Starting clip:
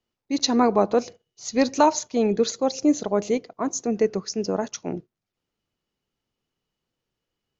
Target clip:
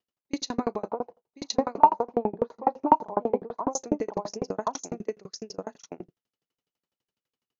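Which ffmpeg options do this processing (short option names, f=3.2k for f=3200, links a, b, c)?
-filter_complex "[0:a]highpass=f=230:p=1,alimiter=limit=-12.5dB:level=0:latency=1:release=200,asettb=1/sr,asplit=3[a][b][c];[a]atrim=end=0.904[d];[b]atrim=start=0.9:end=3.68,asetpts=PTS-STARTPTS,afade=t=in:d=0.004:c=qsin,afade=t=out:st=2.776:d=0.004:c=qsin,lowpass=f=930:t=q:w=6[e];[c]atrim=start=3.676[f];[d][e]acrossfade=d=0.004:c1=hsin:c2=qsin[g];[g][f]acrossfade=d=0.004:c1=qsin:c2=hsin,aeval=exprs='0.841*(cos(1*acos(clip(val(0)/0.841,-1,1)))-cos(1*PI/2))+0.00668*(cos(5*acos(clip(val(0)/0.841,-1,1)))-cos(5*PI/2))':c=same,asplit=2[h][i];[i]adelay=38,volume=-10dB[j];[h][j]amix=inputs=2:normalize=0,aecho=1:1:1059:0.668,aeval=exprs='val(0)*pow(10,-35*if(lt(mod(12*n/s,1),2*abs(12)/1000),1-mod(12*n/s,1)/(2*abs(12)/1000),(mod(12*n/s,1)-2*abs(12)/1000)/(1-2*abs(12)/1000))/20)':c=same,volume=1.5dB"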